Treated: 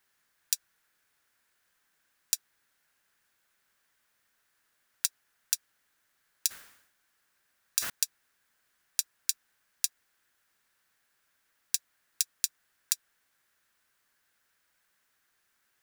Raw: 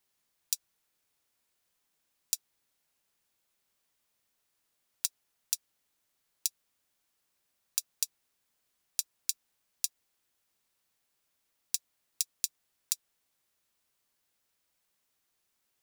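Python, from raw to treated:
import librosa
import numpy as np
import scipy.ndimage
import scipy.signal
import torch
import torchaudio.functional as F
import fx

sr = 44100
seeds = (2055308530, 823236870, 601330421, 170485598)

y = fx.peak_eq(x, sr, hz=1600.0, db=12.0, octaves=0.77)
y = fx.sustainer(y, sr, db_per_s=72.0, at=(6.47, 7.9))
y = y * 10.0 ** (2.5 / 20.0)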